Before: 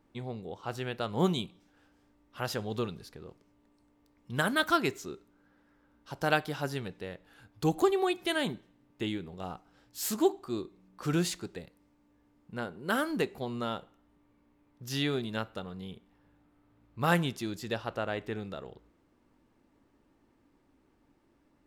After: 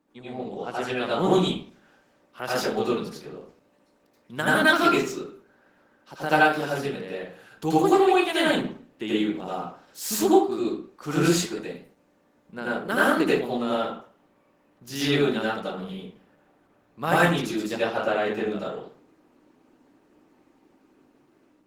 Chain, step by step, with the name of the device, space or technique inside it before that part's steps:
far-field microphone of a smart speaker (convolution reverb RT60 0.45 s, pre-delay 76 ms, DRR −8 dB; high-pass filter 160 Hz 24 dB per octave; automatic gain control gain up to 4 dB; level −2 dB; Opus 16 kbit/s 48,000 Hz)

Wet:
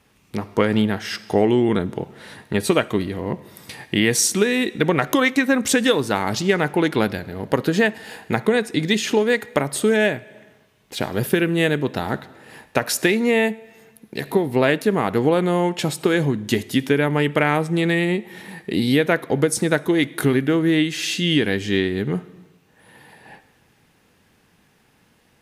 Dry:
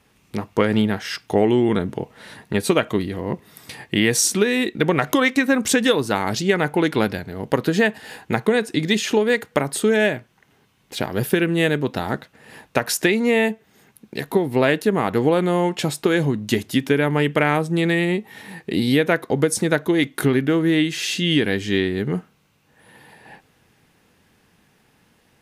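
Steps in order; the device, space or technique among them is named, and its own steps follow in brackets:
compressed reverb return (on a send at −13.5 dB: convolution reverb RT60 0.95 s, pre-delay 51 ms + downward compressor 5 to 1, threshold −25 dBFS, peak gain reduction 11.5 dB)

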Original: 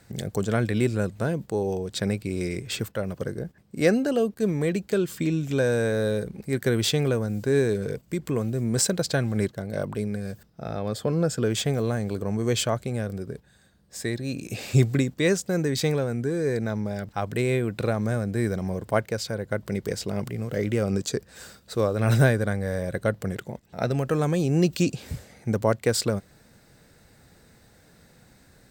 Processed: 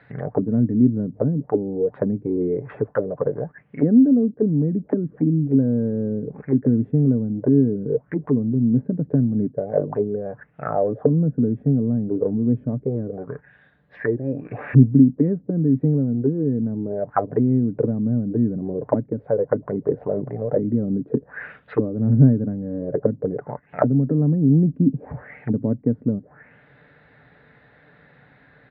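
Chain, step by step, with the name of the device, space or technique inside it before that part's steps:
envelope filter bass rig (envelope-controlled low-pass 250–4,200 Hz down, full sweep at −22.5 dBFS; loudspeaker in its box 87–2,100 Hz, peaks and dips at 96 Hz −9 dB, 190 Hz −7 dB, 340 Hz −7 dB, 1,800 Hz +5 dB)
comb filter 6.8 ms, depth 31%
level +4.5 dB

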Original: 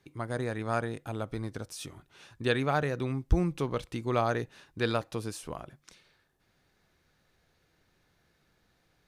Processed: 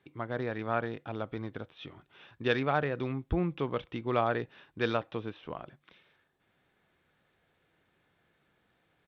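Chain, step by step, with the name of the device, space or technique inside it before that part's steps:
Bluetooth headset (high-pass filter 150 Hz 6 dB per octave; downsampling to 8,000 Hz; SBC 64 kbit/s 32,000 Hz)

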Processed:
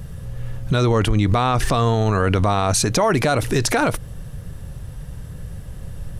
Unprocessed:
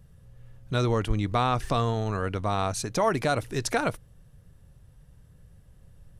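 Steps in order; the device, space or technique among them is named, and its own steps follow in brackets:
loud club master (downward compressor 2.5 to 1, threshold −29 dBFS, peak gain reduction 7.5 dB; hard clipping −20 dBFS, distortion −37 dB; boost into a limiter +29 dB)
level −8.5 dB

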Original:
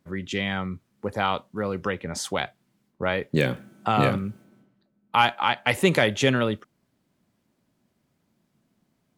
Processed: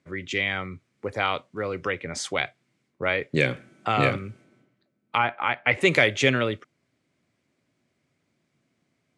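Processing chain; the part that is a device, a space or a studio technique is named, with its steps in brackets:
car door speaker (loudspeaker in its box 85–8,900 Hz, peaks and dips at 200 Hz −10 dB, 890 Hz −6 dB, 2,200 Hz +8 dB)
0:05.17–0:05.80: low-pass filter 1,400 Hz → 2,700 Hz 12 dB per octave

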